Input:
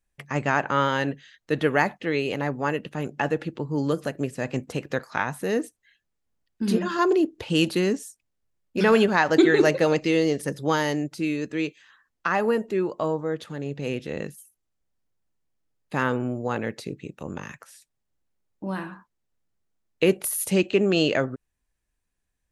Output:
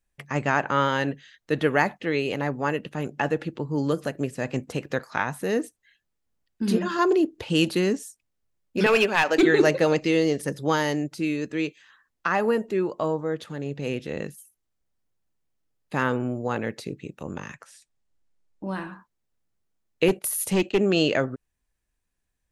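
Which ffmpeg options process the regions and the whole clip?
ffmpeg -i in.wav -filter_complex "[0:a]asettb=1/sr,asplit=3[link_01][link_02][link_03];[link_01]atrim=end=8.864[link_04];[link_02]atrim=start=8.86:end=9.43,asetpts=PTS-STARTPTS,afade=type=in:duration=0.004:curve=qsin,afade=type=out:start_time=0.566:duration=0.004:curve=qsin,highpass=330,equalizer=frequency=2500:width=4.5:gain=11.5,aeval=exprs='clip(val(0),-1,0.188)':channel_layout=same[link_05];[link_03]atrim=start=9.426[link_06];[link_04][link_05]acrossfade=duration=0.004:curve1=hsin:curve2=qsin[link_07];[link_07][link_06]acrossfade=duration=0.004:curve1=qsin:curve2=hsin,asettb=1/sr,asplit=3[link_08][link_09][link_10];[link_08]atrim=end=17.404[link_11];[link_09]atrim=start=17.4:end=18.89,asetpts=PTS-STARTPTS,afade=type=in:duration=0.004:curve=qsin,afade=type=out:start_time=1.486:duration=0.004:curve=qsin,lowpass=frequency=10000:width=0.5412,lowpass=frequency=10000:width=1.3066,asubboost=boost=5:cutoff=51[link_12];[link_10]atrim=start=18.886[link_13];[link_11][link_12]acrossfade=duration=0.004:curve1=hsin:curve2=qsin[link_14];[link_14][link_13]acrossfade=duration=0.004:curve1=qsin:curve2=hsin,asettb=1/sr,asplit=3[link_15][link_16][link_17];[link_15]atrim=end=20.084[link_18];[link_16]atrim=start=20.08:end=20.79,asetpts=PTS-STARTPTS,afade=type=in:duration=0.004:curve=qsin,afade=type=out:start_time=0.706:duration=0.004:curve=qsin,agate=range=-14dB:threshold=-39dB:ratio=16:release=100:detection=peak,aeval=exprs='clip(val(0),-1,0.126)':channel_layout=same[link_19];[link_17]atrim=start=20.786[link_20];[link_18][link_19]acrossfade=duration=0.004:curve1=hsin:curve2=qsin[link_21];[link_21][link_20]acrossfade=duration=0.004:curve1=qsin:curve2=hsin" out.wav

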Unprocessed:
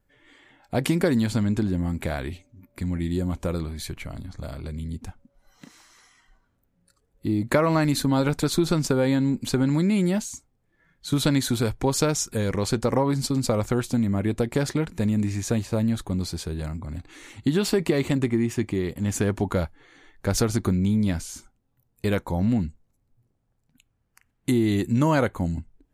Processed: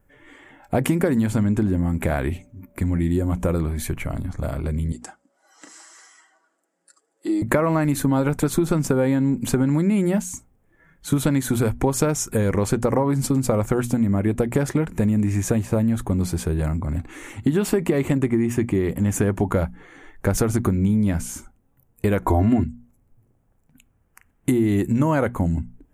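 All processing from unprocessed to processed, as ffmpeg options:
ffmpeg -i in.wav -filter_complex "[0:a]asettb=1/sr,asplit=3[link_01][link_02][link_03];[link_01]atrim=end=4.924[link_04];[link_02]atrim=start=4.92:end=7.42,asetpts=PTS-STARTPTS,afade=type=in:duration=0.004:curve=qsin,afade=type=out:start_time=2.496:duration=0.004:curve=qsin,highpass=frequency=360:width=0.5412,highpass=frequency=360:width=1.3066,equalizer=frequency=470:width_type=q:width=4:gain=-8,equalizer=frequency=990:width_type=q:width=4:gain=-5,equalizer=frequency=2400:width_type=q:width=4:gain=-6,equalizer=frequency=4800:width_type=q:width=4:gain=10,equalizer=frequency=7600:width_type=q:width=4:gain=9,lowpass=frequency=9900:width=0.5412,lowpass=frequency=9900:width=1.3066,aecho=1:1:6.2:0.5,atrim=end_sample=110250[link_05];[link_03]atrim=start=7.416[link_06];[link_04][link_05]acrossfade=duration=0.004:curve1=hsin:curve2=qsin[link_07];[link_07][link_06]acrossfade=duration=0.004:curve1=qsin:curve2=hsin,asettb=1/sr,asplit=3[link_08][link_09][link_10];[link_08]atrim=end=22.224[link_11];[link_09]atrim=start=22.22:end=22.64,asetpts=PTS-STARTPTS,afade=type=in:duration=0.004:curve=qsin,afade=type=out:start_time=0.416:duration=0.004:curve=qsin,bass=frequency=250:gain=-1,treble=frequency=4000:gain=-4,aecho=1:1:2.9:0.93,atrim=end_sample=18522,acontrast=70[link_12];[link_10]atrim=start=22.636[link_13];[link_11][link_12]acrossfade=duration=0.004:curve1=hsin:curve2=qsin[link_14];[link_14][link_13]acrossfade=duration=0.004:curve1=qsin:curve2=hsin,equalizer=frequency=4300:width=1.4:gain=-14,bandreject=frequency=60:width_type=h:width=6,bandreject=frequency=120:width_type=h:width=6,bandreject=frequency=180:width_type=h:width=6,bandreject=frequency=240:width_type=h:width=6,acompressor=threshold=-27dB:ratio=3,volume=9dB" out.wav

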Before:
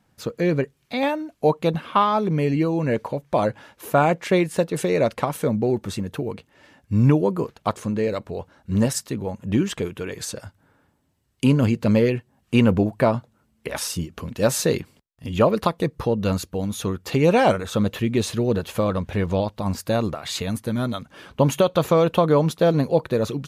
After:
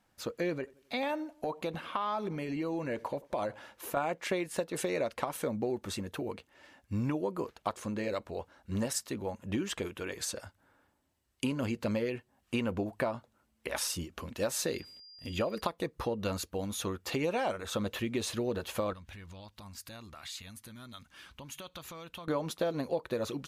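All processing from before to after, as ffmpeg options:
ffmpeg -i in.wav -filter_complex "[0:a]asettb=1/sr,asplit=3[link_01][link_02][link_03];[link_01]atrim=end=0.564[link_04];[link_02]atrim=start=0.56:end=3.97,asetpts=PTS-STARTPTS,afade=type=in:duration=0.004:curve=qsin,afade=type=out:start_time=3.406:duration=0.004:curve=qsin,acompressor=threshold=-21dB:ratio=6:attack=3.2:release=140:knee=1:detection=peak,asplit=2[link_05][link_06];[link_06]adelay=88,lowpass=frequency=1800:poles=1,volume=-22.5dB,asplit=2[link_07][link_08];[link_08]adelay=88,lowpass=frequency=1800:poles=1,volume=0.49,asplit=2[link_09][link_10];[link_10]adelay=88,lowpass=frequency=1800:poles=1,volume=0.49[link_11];[link_05][link_07][link_09][link_11]amix=inputs=4:normalize=0,atrim=end_sample=150381[link_12];[link_03]atrim=start=3.966[link_13];[link_04][link_12]acrossfade=duration=0.004:curve1=hsin:curve2=qsin[link_14];[link_14][link_13]acrossfade=duration=0.004:curve1=qsin:curve2=hsin,asettb=1/sr,asplit=3[link_15][link_16][link_17];[link_15]atrim=end=14.664[link_18];[link_16]atrim=start=14.66:end=15.61,asetpts=PTS-STARTPTS,afade=type=in:duration=0.004:curve=qsin,afade=type=out:start_time=0.946:duration=0.004:curve=qsin,equalizer=frequency=980:width=1.9:gain=-5.5,aeval=exprs='val(0)+0.00501*sin(2*PI*4800*n/s)':channel_layout=same[link_19];[link_17]atrim=start=15.606[link_20];[link_18][link_19]acrossfade=duration=0.004:curve1=hsin:curve2=qsin[link_21];[link_21][link_20]acrossfade=duration=0.004:curve1=qsin:curve2=hsin,asettb=1/sr,asplit=3[link_22][link_23][link_24];[link_22]atrim=end=18.934[link_25];[link_23]atrim=start=18.93:end=22.28,asetpts=PTS-STARTPTS,afade=type=in:duration=0.004:curve=qsin,afade=type=out:start_time=3.346:duration=0.004:curve=qsin,equalizer=frequency=520:width=0.65:gain=-15,acompressor=threshold=-37dB:ratio=3:attack=3.2:release=140:knee=1:detection=peak[link_26];[link_24]atrim=start=22.276[link_27];[link_25][link_26]acrossfade=duration=0.004:curve1=hsin:curve2=qsin[link_28];[link_28][link_27]acrossfade=duration=0.004:curve1=qsin:curve2=hsin,equalizer=frequency=140:width_type=o:width=1.5:gain=-10.5,bandreject=frequency=440:width=12,acompressor=threshold=-24dB:ratio=6,volume=-4.5dB" out.wav

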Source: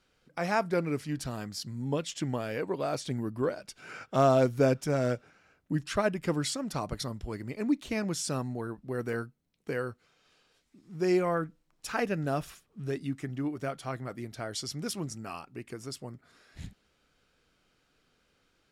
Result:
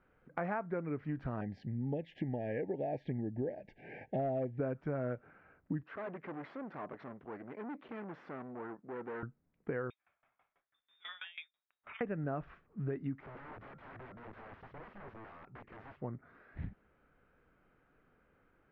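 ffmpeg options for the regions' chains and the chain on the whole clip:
ffmpeg -i in.wav -filter_complex "[0:a]asettb=1/sr,asplit=3[link_01][link_02][link_03];[link_01]atrim=end=1.414[link_04];[link_02]atrim=start=1.41:end=4.59,asetpts=PTS-STARTPTS,afade=type=in:duration=0.004:curve=qsin,afade=type=out:start_time=3.176:duration=0.004:curve=qsin,asuperstop=centerf=1200:order=20:qfactor=1.6,asoftclip=type=hard:threshold=-18dB[link_05];[link_03]atrim=start=4.586[link_06];[link_04][link_05]acrossfade=duration=0.004:curve1=hsin:curve2=qsin[link_07];[link_07][link_06]acrossfade=duration=0.004:curve1=qsin:curve2=hsin,asettb=1/sr,asplit=3[link_08][link_09][link_10];[link_08]atrim=end=5.834[link_11];[link_09]atrim=start=5.83:end=9.23,asetpts=PTS-STARTPTS,afade=type=in:duration=0.004:curve=qsin,afade=type=out:start_time=3.396:duration=0.004:curve=qsin,aeval=exprs='(tanh(100*val(0)+0.55)-tanh(0.55))/100':channel_layout=same,highpass=270,lowpass=7800[link_12];[link_10]atrim=start=9.226[link_13];[link_11][link_12]acrossfade=duration=0.004:curve1=hsin:curve2=qsin[link_14];[link_14][link_13]acrossfade=duration=0.004:curve1=qsin:curve2=hsin,asettb=1/sr,asplit=3[link_15][link_16][link_17];[link_15]atrim=end=9.904[link_18];[link_16]atrim=start=9.9:end=12.01,asetpts=PTS-STARTPTS,afade=type=in:duration=0.004:curve=qsin,afade=type=out:start_time=2.106:duration=0.004:curve=qsin,lowpass=frequency=3200:width_type=q:width=0.5098,lowpass=frequency=3200:width_type=q:width=0.6013,lowpass=frequency=3200:width_type=q:width=0.9,lowpass=frequency=3200:width_type=q:width=2.563,afreqshift=-3800,aeval=exprs='val(0)*pow(10,-22*if(lt(mod(6.1*n/s,1),2*abs(6.1)/1000),1-mod(6.1*n/s,1)/(2*abs(6.1)/1000),(mod(6.1*n/s,1)-2*abs(6.1)/1000)/(1-2*abs(6.1)/1000))/20)':channel_layout=same[link_19];[link_17]atrim=start=12.006[link_20];[link_18][link_19]acrossfade=duration=0.004:curve1=hsin:curve2=qsin[link_21];[link_21][link_20]acrossfade=duration=0.004:curve1=qsin:curve2=hsin,asettb=1/sr,asplit=3[link_22][link_23][link_24];[link_22]atrim=end=13.204[link_25];[link_23]atrim=start=13.2:end=16.01,asetpts=PTS-STARTPTS,afade=type=in:duration=0.004:curve=qsin,afade=type=out:start_time=2.806:duration=0.004:curve=qsin,equalizer=frequency=260:width=6.1:gain=-13.5,acompressor=threshold=-42dB:ratio=12:attack=3.2:release=140:knee=1:detection=peak,aeval=exprs='(mod(200*val(0)+1,2)-1)/200':channel_layout=same[link_26];[link_24]atrim=start=16.006[link_27];[link_25][link_26]acrossfade=duration=0.004:curve1=hsin:curve2=qsin[link_28];[link_28][link_27]acrossfade=duration=0.004:curve1=qsin:curve2=hsin,lowpass=frequency=1900:width=0.5412,lowpass=frequency=1900:width=1.3066,acompressor=threshold=-36dB:ratio=6,volume=2dB" out.wav

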